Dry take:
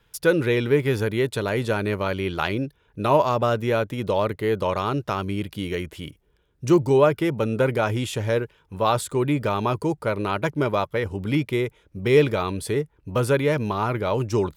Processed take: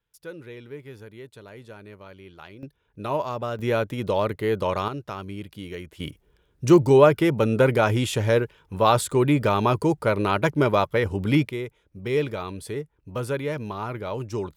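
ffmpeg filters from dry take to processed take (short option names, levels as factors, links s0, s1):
-af "asetnsamples=n=441:p=0,asendcmd='2.63 volume volume -8dB;3.59 volume volume -1dB;4.88 volume volume -8dB;6 volume volume 2.5dB;11.49 volume volume -7dB',volume=0.106"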